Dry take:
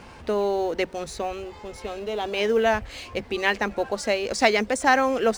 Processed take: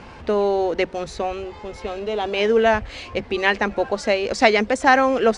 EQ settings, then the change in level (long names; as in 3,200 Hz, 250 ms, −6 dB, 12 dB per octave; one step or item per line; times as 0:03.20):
high-frequency loss of the air 78 metres
+4.5 dB